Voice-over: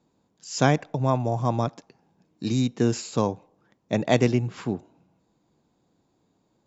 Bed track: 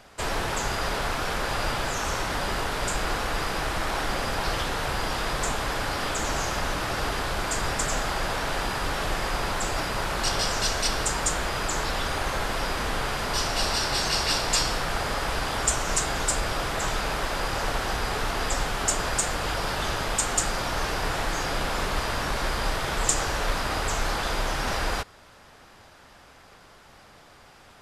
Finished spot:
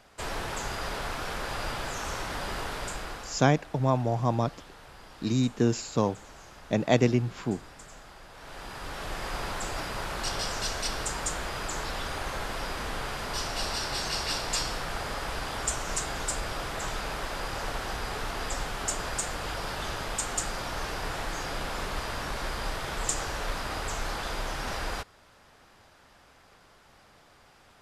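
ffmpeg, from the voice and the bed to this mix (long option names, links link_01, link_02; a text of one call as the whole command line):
ffmpeg -i stem1.wav -i stem2.wav -filter_complex "[0:a]adelay=2800,volume=-2dB[link_01];[1:a]volume=9.5dB,afade=type=out:start_time=2.71:duration=0.76:silence=0.16788,afade=type=in:start_time=8.32:duration=1.05:silence=0.16788[link_02];[link_01][link_02]amix=inputs=2:normalize=0" out.wav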